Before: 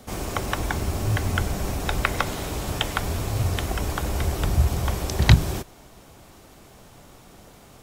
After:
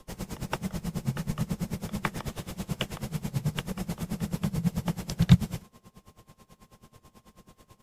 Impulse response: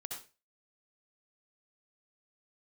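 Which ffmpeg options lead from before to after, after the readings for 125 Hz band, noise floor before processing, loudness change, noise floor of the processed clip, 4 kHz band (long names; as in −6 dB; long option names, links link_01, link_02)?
−5.0 dB, −50 dBFS, −6.0 dB, −69 dBFS, −9.0 dB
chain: -filter_complex "[0:a]aeval=exprs='val(0)+0.00224*sin(2*PI*1300*n/s)':channel_layout=same,asplit=2[link_01][link_02];[link_02]acrusher=samples=19:mix=1:aa=0.000001,volume=-9.5dB[link_03];[link_01][link_03]amix=inputs=2:normalize=0,afreqshift=-240,aresample=32000,aresample=44100,aeval=exprs='val(0)*pow(10,-21*(0.5-0.5*cos(2*PI*9.2*n/s))/20)':channel_layout=same,volume=-4dB"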